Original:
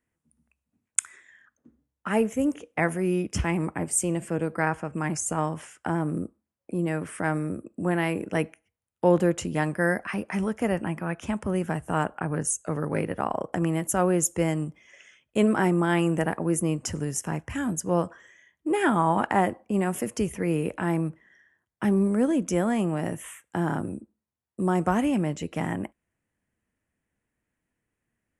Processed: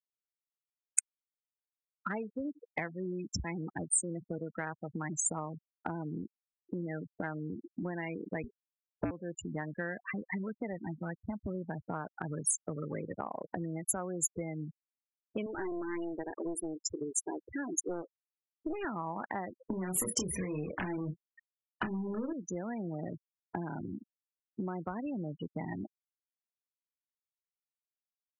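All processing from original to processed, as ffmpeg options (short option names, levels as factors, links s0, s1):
-filter_complex "[0:a]asettb=1/sr,asplit=3[s0][s1][s2];[s0]atrim=end=8.434[s3];[s1]atrim=start=8.43:end=9.11,asetpts=PTS-STARTPTS,afade=t=in:d=0.004:c=qsin,afade=t=out:st=0.676:d=0.004:c=qsin,equalizer=f=650:t=o:w=2.5:g=14.5,aeval=exprs='clip(val(0),-1,0.376)':c=same,afreqshift=-240[s4];[s2]atrim=start=9.106[s5];[s3][s4]acrossfade=d=0.004:c1=hsin:c2=qsin[s6];[s6][s5]acrossfade=d=0.004:c1=qsin:c2=hsin,asettb=1/sr,asplit=3[s7][s8][s9];[s7]atrim=end=15.464[s10];[s8]atrim=start=15.46:end=18.85,asetpts=PTS-STARTPTS,afade=t=in:d=0.004:c=qsin,afade=t=out:st=3.386:d=0.004:c=qsin,lowshelf=f=260:t=q:w=3:g=-9,aeval=exprs='clip(val(0),-1,0.0562)':c=same[s11];[s9]atrim=start=18.846[s12];[s10][s11]acrossfade=d=0.004:c1=hsin:c2=qsin[s13];[s13][s12]acrossfade=d=0.004:c1=qsin:c2=hsin,asettb=1/sr,asplit=3[s14][s15][s16];[s14]atrim=end=19.584[s17];[s15]atrim=start=19.58:end=22.33,asetpts=PTS-STARTPTS,afade=t=in:d=0.004:c=qsin,afade=t=out:st=2.746:d=0.004:c=qsin,acompressor=threshold=0.0447:ratio=16:attack=3.2:release=140:knee=1:detection=peak,aeval=exprs='0.178*sin(PI/2*3.16*val(0)/0.178)':c=same,asplit=2[s18][s19];[s19]adelay=27,volume=0.631[s20];[s18][s20]amix=inputs=2:normalize=0,atrim=end_sample=121275[s21];[s16]atrim=start=22.326[s22];[s17][s21]acrossfade=d=0.004:c1=hsin:c2=qsin[s23];[s23][s22]acrossfade=d=0.004:c1=qsin:c2=hsin,afftfilt=real='re*gte(hypot(re,im),0.0708)':imag='im*gte(hypot(re,im),0.0708)':win_size=1024:overlap=0.75,acompressor=threshold=0.0178:ratio=8,highshelf=f=2400:g=9"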